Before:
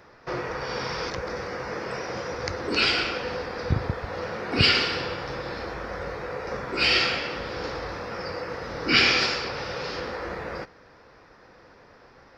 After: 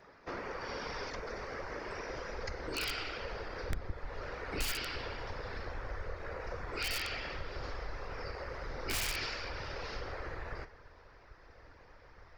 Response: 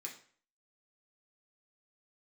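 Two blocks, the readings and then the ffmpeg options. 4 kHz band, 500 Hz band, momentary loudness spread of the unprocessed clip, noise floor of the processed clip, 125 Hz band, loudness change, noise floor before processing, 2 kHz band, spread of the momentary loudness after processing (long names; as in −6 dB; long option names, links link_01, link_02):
−16.0 dB, −12.0 dB, 14 LU, −58 dBFS, −11.5 dB, −13.5 dB, −53 dBFS, −13.5 dB, 23 LU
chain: -filter_complex "[0:a]highshelf=frequency=3500:gain=-3.5,asplit=2[link_01][link_02];[1:a]atrim=start_sample=2205,asetrate=37926,aresample=44100[link_03];[link_02][link_03]afir=irnorm=-1:irlink=0,volume=-5dB[link_04];[link_01][link_04]amix=inputs=2:normalize=0,afftfilt=real='hypot(re,im)*cos(2*PI*random(0))':imag='hypot(re,im)*sin(2*PI*random(1))':win_size=512:overlap=0.75,aeval=exprs='(mod(7.94*val(0)+1,2)-1)/7.94':channel_layout=same,asubboost=boost=11.5:cutoff=58,acompressor=threshold=-38dB:ratio=2,volume=-1.5dB"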